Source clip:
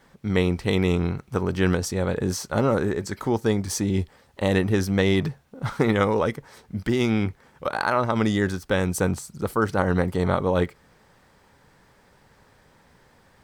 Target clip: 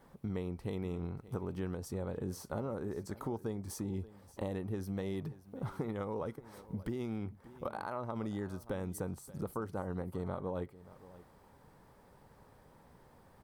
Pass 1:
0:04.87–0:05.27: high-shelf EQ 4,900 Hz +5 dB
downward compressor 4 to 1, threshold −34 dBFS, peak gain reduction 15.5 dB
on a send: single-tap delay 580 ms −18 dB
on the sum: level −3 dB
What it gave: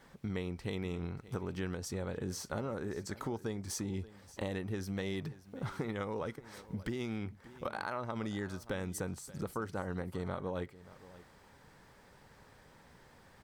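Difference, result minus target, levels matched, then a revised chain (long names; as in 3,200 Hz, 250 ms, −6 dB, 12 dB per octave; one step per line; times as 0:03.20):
4,000 Hz band +8.0 dB
0:04.87–0:05.27: high-shelf EQ 4,900 Hz +5 dB
downward compressor 4 to 1, threshold −34 dBFS, peak gain reduction 15.5 dB
flat-topped bell 3,400 Hz −8.5 dB 2.7 octaves
on a send: single-tap delay 580 ms −18 dB
on the sum: level −3 dB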